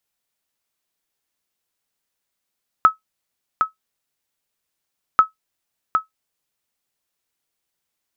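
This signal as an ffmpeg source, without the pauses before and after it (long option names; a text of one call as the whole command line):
ffmpeg -f lavfi -i "aevalsrc='0.75*(sin(2*PI*1290*mod(t,2.34))*exp(-6.91*mod(t,2.34)/0.13)+0.501*sin(2*PI*1290*max(mod(t,2.34)-0.76,0))*exp(-6.91*max(mod(t,2.34)-0.76,0)/0.13))':duration=4.68:sample_rate=44100" out.wav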